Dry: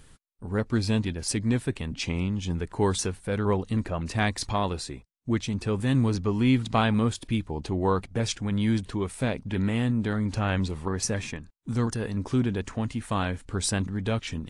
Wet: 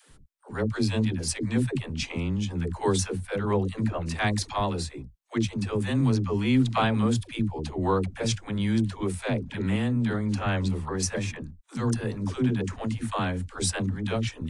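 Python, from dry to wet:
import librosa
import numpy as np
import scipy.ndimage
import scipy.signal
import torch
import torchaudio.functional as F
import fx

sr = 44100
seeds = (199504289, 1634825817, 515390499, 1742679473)

y = fx.dispersion(x, sr, late='lows', ms=106.0, hz=350.0)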